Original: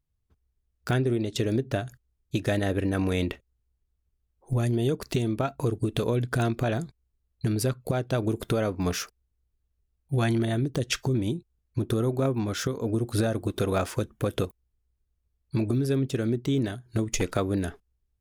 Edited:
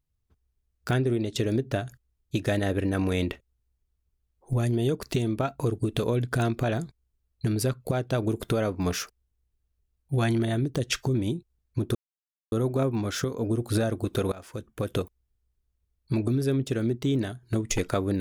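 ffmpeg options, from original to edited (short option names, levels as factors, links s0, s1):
-filter_complex "[0:a]asplit=3[s0][s1][s2];[s0]atrim=end=11.95,asetpts=PTS-STARTPTS,afade=t=out:st=11.946:d=0.004:c=hsin,apad=pad_dur=0.57[s3];[s1]atrim=start=11.95:end=13.75,asetpts=PTS-STARTPTS,afade=t=in:d=0.004:c=hsin,afade=t=out:st=1.796:d=0.004:c=hsin:silence=0.0707946[s4];[s2]atrim=start=13.75,asetpts=PTS-STARTPTS,afade=t=in:d=0.7:silence=0.0707946[s5];[s3][s4][s5]concat=n=3:v=0:a=1"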